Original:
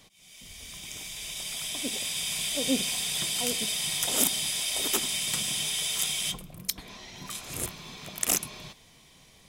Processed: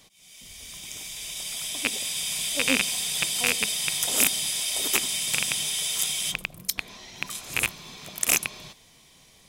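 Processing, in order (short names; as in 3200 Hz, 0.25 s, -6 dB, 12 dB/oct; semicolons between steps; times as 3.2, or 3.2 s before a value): rattling part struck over -38 dBFS, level -9 dBFS; tone controls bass -2 dB, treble +3 dB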